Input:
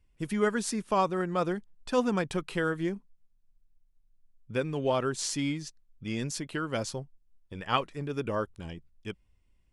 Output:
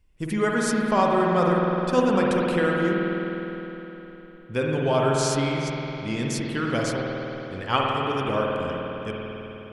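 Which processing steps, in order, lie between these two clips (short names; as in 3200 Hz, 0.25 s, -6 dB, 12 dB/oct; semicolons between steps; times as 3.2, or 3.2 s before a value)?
spring tank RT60 3.7 s, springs 51 ms, chirp 60 ms, DRR -2.5 dB; gain +3.5 dB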